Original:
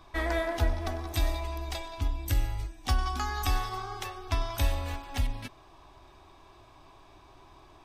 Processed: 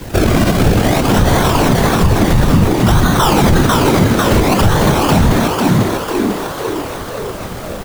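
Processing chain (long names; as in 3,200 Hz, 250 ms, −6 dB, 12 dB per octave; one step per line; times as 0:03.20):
parametric band 1,400 Hz +4.5 dB
comb filter 4.9 ms, depth 40%
in parallel at +2 dB: downward compressor, threshold −37 dBFS, peak gain reduction 16.5 dB
on the sum: sample-and-hold swept by an LFO 34×, swing 100% 0.57 Hz
random phases in short frames
bit reduction 9 bits
on a send: echo with shifted repeats 496 ms, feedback 58%, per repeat +88 Hz, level −4 dB
on the sum: boost into a limiter +18.5 dB
level −1 dB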